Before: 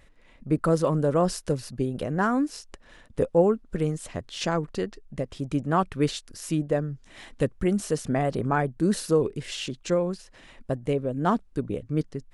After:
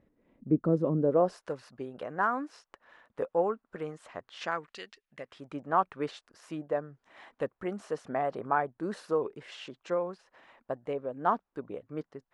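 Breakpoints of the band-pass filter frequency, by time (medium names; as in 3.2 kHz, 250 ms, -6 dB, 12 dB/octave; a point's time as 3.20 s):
band-pass filter, Q 1.2
0.96 s 270 Hz
1.45 s 1.1 kHz
4.39 s 1.1 kHz
4.85 s 3.3 kHz
5.58 s 960 Hz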